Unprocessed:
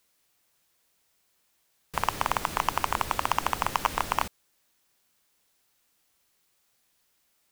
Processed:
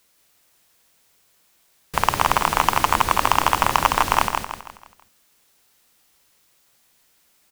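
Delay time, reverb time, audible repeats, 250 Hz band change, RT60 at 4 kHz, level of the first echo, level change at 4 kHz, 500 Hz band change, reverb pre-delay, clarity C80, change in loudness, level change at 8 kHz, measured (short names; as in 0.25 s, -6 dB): 0.162 s, none, 4, +9.5 dB, none, -5.0 dB, +9.5 dB, +9.0 dB, none, none, +9.0 dB, +9.5 dB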